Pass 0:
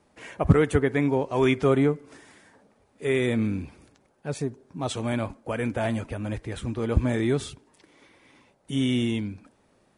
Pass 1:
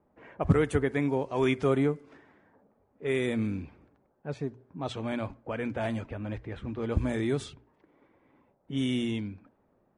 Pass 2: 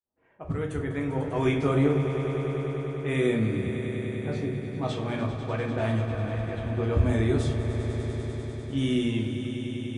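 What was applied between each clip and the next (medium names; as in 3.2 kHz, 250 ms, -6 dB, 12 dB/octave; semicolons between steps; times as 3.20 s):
hum notches 60/120 Hz; level-controlled noise filter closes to 1.1 kHz, open at -19.5 dBFS; trim -4.5 dB
fade-in on the opening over 1.80 s; echo with a slow build-up 99 ms, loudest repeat 5, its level -13 dB; simulated room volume 55 m³, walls mixed, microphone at 0.59 m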